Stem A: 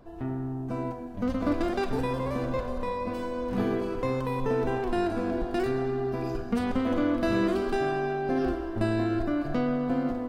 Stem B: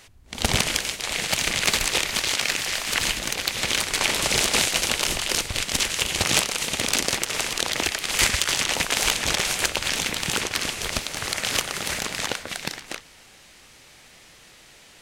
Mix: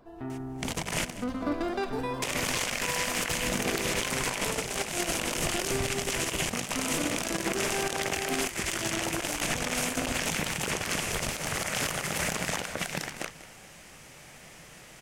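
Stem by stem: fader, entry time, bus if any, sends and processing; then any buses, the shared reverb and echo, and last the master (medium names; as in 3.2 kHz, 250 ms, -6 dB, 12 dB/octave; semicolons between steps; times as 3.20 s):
-2.5 dB, 0.00 s, no send, no echo send, bass shelf 230 Hz -8 dB; band-stop 530 Hz, Q 12
-0.5 dB, 0.30 s, muted 1.05–2.22 s, no send, echo send -19.5 dB, fifteen-band graphic EQ 160 Hz +7 dB, 630 Hz +3 dB, 4 kHz -8 dB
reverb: none
echo: feedback delay 192 ms, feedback 17%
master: compressor with a negative ratio -27 dBFS, ratio -0.5; peak limiter -17.5 dBFS, peak gain reduction 10 dB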